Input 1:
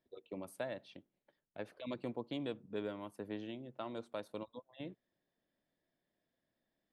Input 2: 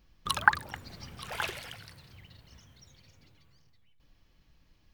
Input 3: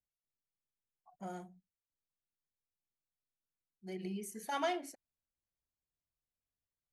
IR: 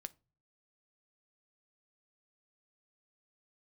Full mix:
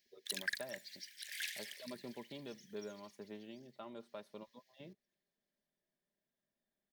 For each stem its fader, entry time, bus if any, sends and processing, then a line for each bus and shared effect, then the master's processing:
-7.5 dB, 0.00 s, no send, no echo send, comb 5 ms, depth 53%
+0.5 dB, 0.00 s, no send, echo send -24 dB, steep high-pass 1700 Hz 96 dB/oct; bell 2700 Hz -9 dB 0.61 oct; soft clip -29.5 dBFS, distortion -8 dB
off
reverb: off
echo: feedback echo 0.739 s, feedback 38%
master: dry

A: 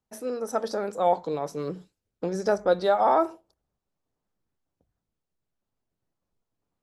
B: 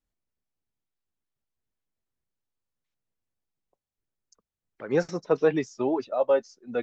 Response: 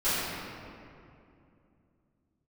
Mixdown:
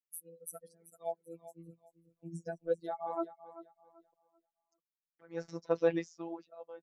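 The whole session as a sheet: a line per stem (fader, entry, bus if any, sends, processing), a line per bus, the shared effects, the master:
+2.5 dB, 0.00 s, no send, echo send -15 dB, per-bin expansion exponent 3; EQ curve 100 Hz 0 dB, 5200 Hz -17 dB, 10000 Hz +13 dB; upward expander 1.5:1, over -49 dBFS
-4.5 dB, 0.40 s, no send, no echo send, dB-linear tremolo 0.55 Hz, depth 19 dB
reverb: off
echo: feedback echo 0.387 s, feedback 27%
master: low shelf 63 Hz -11 dB; robotiser 167 Hz

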